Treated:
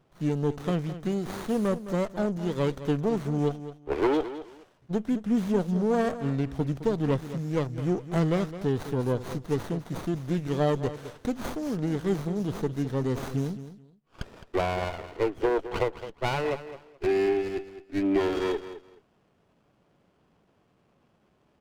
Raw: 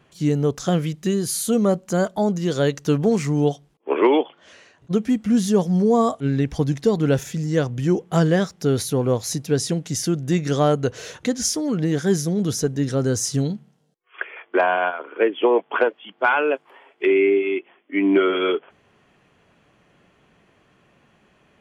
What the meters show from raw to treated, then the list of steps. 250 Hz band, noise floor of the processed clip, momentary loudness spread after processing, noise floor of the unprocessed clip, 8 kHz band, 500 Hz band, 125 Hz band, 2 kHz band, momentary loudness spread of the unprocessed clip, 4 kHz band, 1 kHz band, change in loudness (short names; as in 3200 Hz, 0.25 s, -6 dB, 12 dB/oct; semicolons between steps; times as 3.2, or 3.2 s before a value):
-7.0 dB, -67 dBFS, 8 LU, -61 dBFS, -20.5 dB, -7.5 dB, -6.5 dB, -11.5 dB, 7 LU, -10.5 dB, -8.0 dB, -7.5 dB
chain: feedback echo 0.213 s, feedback 21%, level -13 dB; running maximum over 17 samples; gain -7 dB